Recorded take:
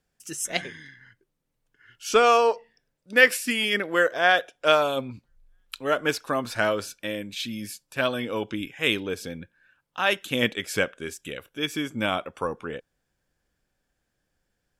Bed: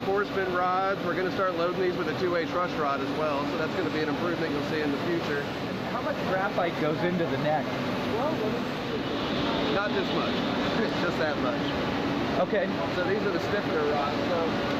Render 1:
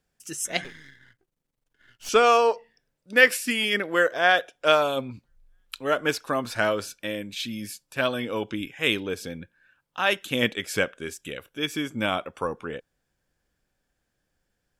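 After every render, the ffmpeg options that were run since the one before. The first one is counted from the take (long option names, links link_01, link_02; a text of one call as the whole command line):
ffmpeg -i in.wav -filter_complex "[0:a]asettb=1/sr,asplit=3[link_01][link_02][link_03];[link_01]atrim=end=0.644[link_04];[link_02]atrim=start=0.64:end=2.09,asetpts=PTS-STARTPTS,afade=type=in:duration=0.004:curve=qsin,afade=type=out:start_time=1.446:duration=0.004:curve=qsin,aeval=exprs='if(lt(val(0),0),0.251*val(0),val(0))':channel_layout=same[link_05];[link_03]atrim=start=2.086[link_06];[link_04][link_05]acrossfade=duration=0.004:curve1=hsin:curve2=qsin[link_07];[link_07][link_06]acrossfade=duration=0.004:curve1=qsin:curve2=hsin" out.wav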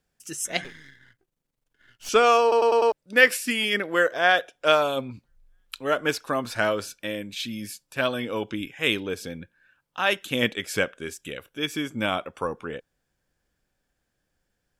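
ffmpeg -i in.wav -filter_complex "[0:a]asplit=6[link_01][link_02][link_03][link_04][link_05][link_06];[link_01]atrim=end=2.522[link_07];[link_02]atrim=start=2.418:end=2.522[link_08];[link_03]atrim=start=2.418:end=2.522[link_09];[link_04]atrim=start=2.418:end=2.522[link_10];[link_05]atrim=start=2.418:end=2.522[link_11];[link_06]atrim=start=2.918[link_12];[link_07][link_08]acrossfade=duration=0.004:curve1=hsin:curve2=hsin[link_13];[link_13][link_09]acrossfade=duration=0.004:curve1=hsin:curve2=hsin[link_14];[link_14][link_10]acrossfade=duration=0.004:curve1=hsin:curve2=hsin[link_15];[link_15][link_11]acrossfade=duration=0.004:curve1=hsin:curve2=hsin[link_16];[link_16][link_12]acrossfade=duration=0.004:curve1=hsin:curve2=hsin" out.wav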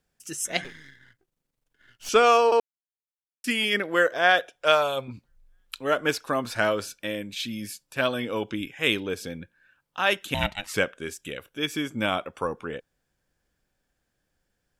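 ffmpeg -i in.wav -filter_complex "[0:a]asettb=1/sr,asplit=3[link_01][link_02][link_03];[link_01]atrim=end=4.554[link_04];[link_02]atrim=start=4.55:end=5.08,asetpts=PTS-STARTPTS,afade=type=in:duration=0.004:curve=qsin,afade=type=out:start_time=0.526:duration=0.004:curve=qsin,equalizer=frequency=250:width_type=o:width=0.77:gain=-11.5[link_05];[link_03]atrim=start=5.076[link_06];[link_04][link_05]acrossfade=duration=0.004:curve1=hsin:curve2=qsin[link_07];[link_07][link_06]acrossfade=duration=0.004:curve1=qsin:curve2=hsin,asettb=1/sr,asplit=3[link_08][link_09][link_10];[link_08]atrim=end=10.344[link_11];[link_09]atrim=start=10.34:end=10.74,asetpts=PTS-STARTPTS,afade=type=in:duration=0.004:curve=qsin,afade=type=out:start_time=0.396:duration=0.004:curve=qsin,aeval=exprs='val(0)*sin(2*PI*410*n/s)':channel_layout=same[link_12];[link_10]atrim=start=10.736[link_13];[link_11][link_12]acrossfade=duration=0.004:curve1=hsin:curve2=qsin[link_14];[link_14][link_13]acrossfade=duration=0.004:curve1=qsin:curve2=hsin,asplit=3[link_15][link_16][link_17];[link_15]atrim=end=2.6,asetpts=PTS-STARTPTS,afade=type=out:start_time=2.596:duration=0.004:curve=hsin[link_18];[link_16]atrim=start=2.6:end=3.44,asetpts=PTS-STARTPTS,volume=0[link_19];[link_17]atrim=start=3.44,asetpts=PTS-STARTPTS,afade=type=in:duration=0.004:curve=hsin[link_20];[link_18][link_19][link_20]concat=n=3:v=0:a=1" out.wav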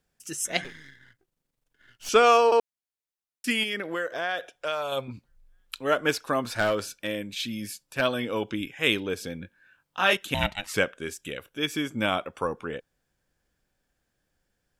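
ffmpeg -i in.wav -filter_complex "[0:a]asettb=1/sr,asplit=3[link_01][link_02][link_03];[link_01]atrim=end=3.634[link_04];[link_02]atrim=start=3.63:end=4.92,asetpts=PTS-STARTPTS,afade=type=in:duration=0.004:curve=qsin,afade=type=out:start_time=1.286:duration=0.004:curve=qsin,acompressor=threshold=-28dB:ratio=3:attack=3.2:release=140:knee=1:detection=peak[link_05];[link_03]atrim=start=4.916[link_06];[link_04][link_05]acrossfade=duration=0.004:curve1=hsin:curve2=qsin[link_07];[link_07][link_06]acrossfade=duration=0.004:curve1=qsin:curve2=hsin,asplit=3[link_08][link_09][link_10];[link_08]afade=type=out:start_time=6.52:duration=0.02[link_11];[link_09]aeval=exprs='clip(val(0),-1,0.106)':channel_layout=same,afade=type=in:start_time=6.52:duration=0.02,afade=type=out:start_time=8:duration=0.02[link_12];[link_10]afade=type=in:start_time=8:duration=0.02[link_13];[link_11][link_12][link_13]amix=inputs=3:normalize=0,asettb=1/sr,asplit=3[link_14][link_15][link_16];[link_14]atrim=end=9.414[link_17];[link_15]atrim=start=9.41:end=10.17,asetpts=PTS-STARTPTS,afade=type=in:duration=0.004:curve=qsin,afade=type=out:start_time=0.756:duration=0.004:curve=qsin,asplit=2[link_18][link_19];[link_19]adelay=21,volume=-3.5dB[link_20];[link_18][link_20]amix=inputs=2:normalize=0,atrim=end_sample=33516[link_21];[link_16]atrim=start=10.166[link_22];[link_17][link_21]acrossfade=duration=0.004:curve1=hsin:curve2=qsin[link_23];[link_23][link_22]acrossfade=duration=0.004:curve1=qsin:curve2=hsin" out.wav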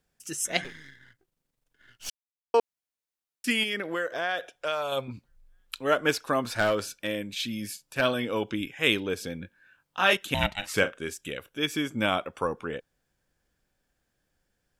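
ffmpeg -i in.wav -filter_complex "[0:a]asettb=1/sr,asplit=3[link_01][link_02][link_03];[link_01]atrim=end=7.734[link_04];[link_02]atrim=start=7.73:end=8.13,asetpts=PTS-STARTPTS,afade=type=in:duration=0.004:curve=qsin,afade=type=out:start_time=0.396:duration=0.004:curve=qsin,asplit=2[link_05][link_06];[link_06]adelay=40,volume=-13dB[link_07];[link_05][link_07]amix=inputs=2:normalize=0,atrim=end_sample=17640[link_08];[link_03]atrim=start=8.126[link_09];[link_04][link_08]acrossfade=duration=0.004:curve1=hsin:curve2=qsin[link_10];[link_10][link_09]acrossfade=duration=0.004:curve1=qsin:curve2=hsin,asettb=1/sr,asplit=3[link_11][link_12][link_13];[link_11]atrim=end=10.564[link_14];[link_12]atrim=start=10.56:end=10.99,asetpts=PTS-STARTPTS,afade=type=in:duration=0.004:curve=qsin,afade=type=out:start_time=0.426:duration=0.004:curve=qsin,asplit=2[link_15][link_16];[link_16]adelay=41,volume=-12dB[link_17];[link_15][link_17]amix=inputs=2:normalize=0,atrim=end_sample=18963[link_18];[link_13]atrim=start=10.986[link_19];[link_14][link_18]acrossfade=duration=0.004:curve1=hsin:curve2=qsin[link_20];[link_20][link_19]acrossfade=duration=0.004:curve1=qsin:curve2=hsin,asplit=3[link_21][link_22][link_23];[link_21]atrim=end=2.1,asetpts=PTS-STARTPTS,afade=type=out:start_time=2.096:duration=0.004:curve=hsin[link_24];[link_22]atrim=start=2.1:end=2.54,asetpts=PTS-STARTPTS,volume=0[link_25];[link_23]atrim=start=2.54,asetpts=PTS-STARTPTS,afade=type=in:duration=0.004:curve=hsin[link_26];[link_24][link_25][link_26]concat=n=3:v=0:a=1" out.wav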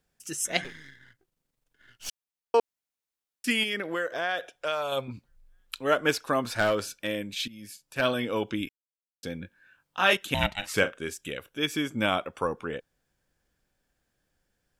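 ffmpeg -i in.wav -filter_complex "[0:a]asplit=4[link_01][link_02][link_03][link_04];[link_01]atrim=end=7.48,asetpts=PTS-STARTPTS,afade=type=out:start_time=7.476:duration=0.004:curve=hsin:silence=0.141254[link_05];[link_02]atrim=start=7.48:end=8.69,asetpts=PTS-STARTPTS,afade=type=in:duration=0.63:silence=0.141254,afade=type=out:start_time=1.206:duration=0.004:curve=hsin[link_06];[link_03]atrim=start=8.69:end=9.23,asetpts=PTS-STARTPTS,volume=0[link_07];[link_04]atrim=start=9.23,asetpts=PTS-STARTPTS,afade=type=in:duration=0.004:curve=hsin[link_08];[link_05][link_06][link_07][link_08]concat=n=4:v=0:a=1" out.wav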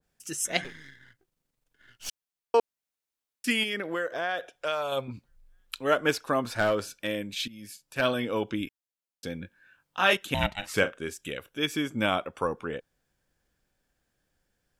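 ffmpeg -i in.wav -af "adynamicequalizer=threshold=0.0112:dfrequency=1600:dqfactor=0.7:tfrequency=1600:tqfactor=0.7:attack=5:release=100:ratio=0.375:range=2:mode=cutabove:tftype=highshelf" out.wav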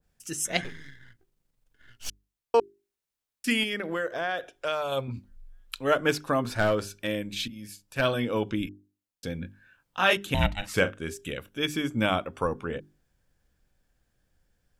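ffmpeg -i in.wav -af "lowshelf=frequency=150:gain=10.5,bandreject=frequency=50:width_type=h:width=6,bandreject=frequency=100:width_type=h:width=6,bandreject=frequency=150:width_type=h:width=6,bandreject=frequency=200:width_type=h:width=6,bandreject=frequency=250:width_type=h:width=6,bandreject=frequency=300:width_type=h:width=6,bandreject=frequency=350:width_type=h:width=6,bandreject=frequency=400:width_type=h:width=6" out.wav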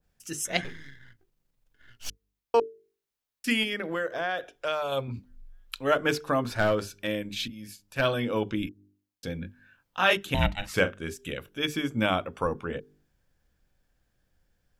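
ffmpeg -i in.wav -af "equalizer=frequency=8700:width_type=o:width=0.69:gain=-3.5,bandreject=frequency=50:width_type=h:width=6,bandreject=frequency=100:width_type=h:width=6,bandreject=frequency=150:width_type=h:width=6,bandreject=frequency=200:width_type=h:width=6,bandreject=frequency=250:width_type=h:width=6,bandreject=frequency=300:width_type=h:width=6,bandreject=frequency=350:width_type=h:width=6,bandreject=frequency=400:width_type=h:width=6,bandreject=frequency=450:width_type=h:width=6" out.wav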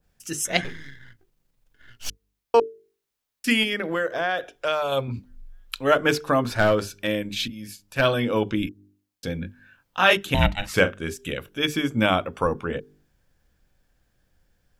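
ffmpeg -i in.wav -af "volume=5dB" out.wav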